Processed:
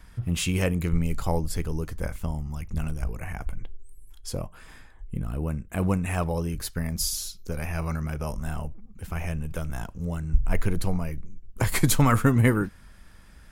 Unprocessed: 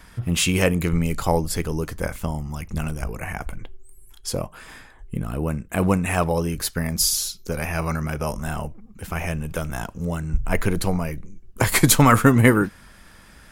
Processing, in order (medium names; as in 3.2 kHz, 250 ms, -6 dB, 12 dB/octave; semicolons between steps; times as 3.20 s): bass shelf 120 Hz +10.5 dB; trim -8 dB